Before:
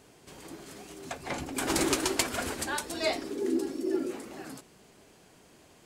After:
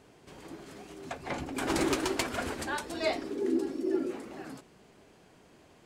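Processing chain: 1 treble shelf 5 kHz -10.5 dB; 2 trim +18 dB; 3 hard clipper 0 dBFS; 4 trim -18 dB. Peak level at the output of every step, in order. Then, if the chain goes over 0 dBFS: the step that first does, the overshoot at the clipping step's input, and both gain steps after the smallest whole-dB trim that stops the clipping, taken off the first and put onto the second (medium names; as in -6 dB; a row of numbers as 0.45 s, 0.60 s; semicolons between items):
-14.0 dBFS, +4.0 dBFS, 0.0 dBFS, -18.0 dBFS; step 2, 4.0 dB; step 2 +14 dB, step 4 -14 dB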